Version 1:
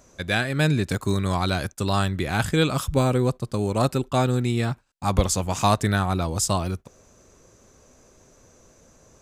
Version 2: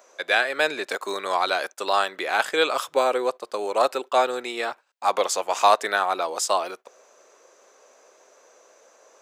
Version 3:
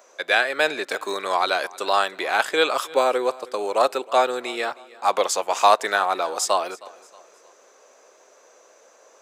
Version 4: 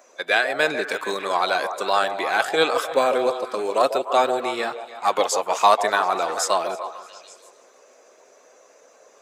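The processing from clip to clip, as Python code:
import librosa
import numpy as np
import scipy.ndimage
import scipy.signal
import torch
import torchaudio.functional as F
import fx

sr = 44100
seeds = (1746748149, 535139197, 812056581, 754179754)

y1 = scipy.signal.sosfilt(scipy.signal.butter(4, 470.0, 'highpass', fs=sr, output='sos'), x)
y1 = fx.peak_eq(y1, sr, hz=11000.0, db=-9.5, octaves=1.8)
y1 = y1 * 10.0 ** (5.0 / 20.0)
y2 = fx.echo_feedback(y1, sr, ms=314, feedback_pct=42, wet_db=-21.5)
y2 = y2 * 10.0 ** (1.5 / 20.0)
y3 = fx.spec_quant(y2, sr, step_db=15)
y3 = fx.bass_treble(y3, sr, bass_db=9, treble_db=0)
y3 = fx.echo_stepped(y3, sr, ms=147, hz=590.0, octaves=0.7, feedback_pct=70, wet_db=-6)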